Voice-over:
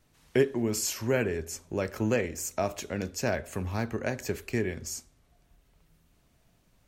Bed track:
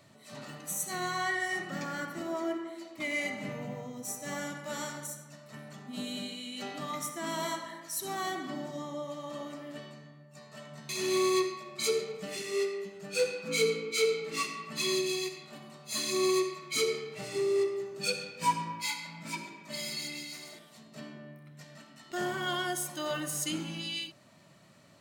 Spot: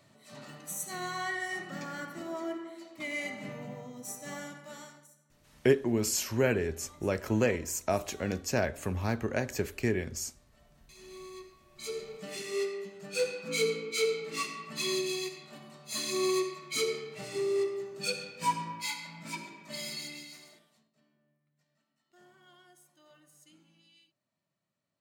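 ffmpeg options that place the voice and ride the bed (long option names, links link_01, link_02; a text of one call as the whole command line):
ffmpeg -i stem1.wav -i stem2.wav -filter_complex "[0:a]adelay=5300,volume=0dB[link_01];[1:a]volume=15dB,afade=type=out:start_time=4.25:duration=0.84:silence=0.149624,afade=type=in:start_time=11.66:duration=0.72:silence=0.125893,afade=type=out:start_time=19.87:duration=1.06:silence=0.0530884[link_02];[link_01][link_02]amix=inputs=2:normalize=0" out.wav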